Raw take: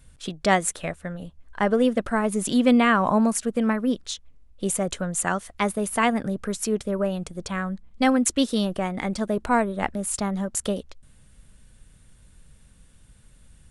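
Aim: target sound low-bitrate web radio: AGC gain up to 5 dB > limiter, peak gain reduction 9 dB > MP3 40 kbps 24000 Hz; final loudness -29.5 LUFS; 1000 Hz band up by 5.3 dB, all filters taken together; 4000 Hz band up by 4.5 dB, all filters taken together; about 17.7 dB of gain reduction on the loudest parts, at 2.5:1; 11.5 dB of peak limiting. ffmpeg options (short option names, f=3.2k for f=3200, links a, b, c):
-af "equalizer=f=1k:t=o:g=6.5,equalizer=f=4k:t=o:g=5.5,acompressor=threshold=-40dB:ratio=2.5,alimiter=level_in=4dB:limit=-24dB:level=0:latency=1,volume=-4dB,dynaudnorm=m=5dB,alimiter=level_in=13dB:limit=-24dB:level=0:latency=1,volume=-13dB,volume=18dB" -ar 24000 -c:a libmp3lame -b:a 40k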